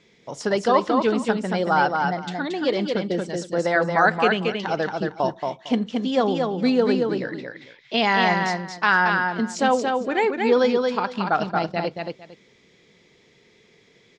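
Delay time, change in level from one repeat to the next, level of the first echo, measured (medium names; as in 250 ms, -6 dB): 227 ms, -14.0 dB, -4.0 dB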